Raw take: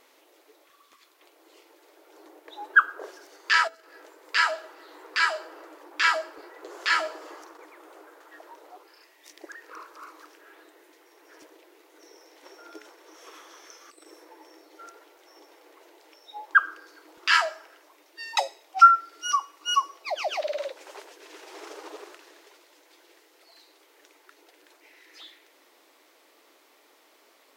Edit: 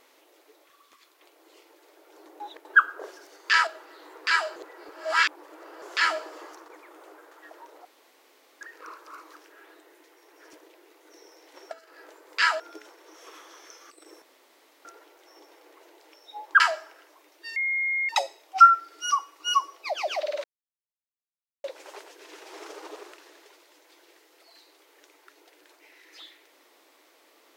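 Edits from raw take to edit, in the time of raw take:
2.4–2.65 reverse
3.67–4.56 move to 12.6
5.45–6.71 reverse
8.74–9.5 room tone
14.22–14.85 room tone
16.6–17.34 cut
18.3 add tone 2140 Hz -23.5 dBFS 0.53 s
20.65 insert silence 1.20 s

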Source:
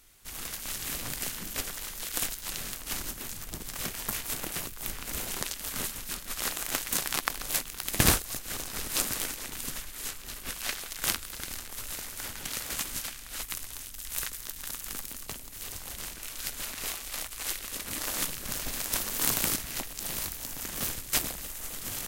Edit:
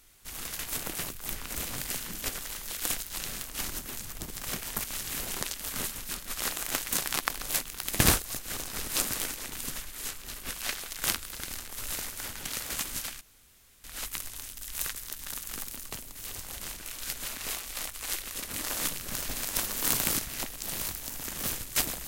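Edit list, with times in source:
0.59–0.97 swap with 4.16–5.22
11.82–12.1 gain +3 dB
13.21 insert room tone 0.63 s

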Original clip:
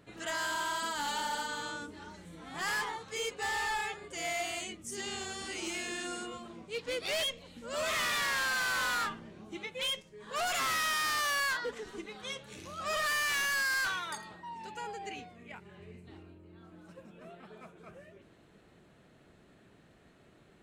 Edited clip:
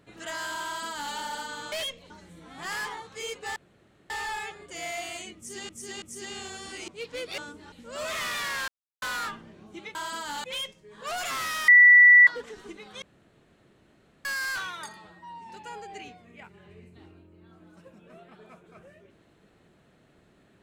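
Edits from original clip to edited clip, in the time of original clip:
0.65–1.14 copy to 9.73
1.72–2.06 swap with 7.12–7.5
3.52 insert room tone 0.54 s
4.78–5.11 loop, 3 plays
5.64–6.62 cut
8.46–8.8 mute
10.97–11.56 bleep 1960 Hz -10.5 dBFS
12.31–13.54 room tone
14.26–14.61 stretch 1.5×

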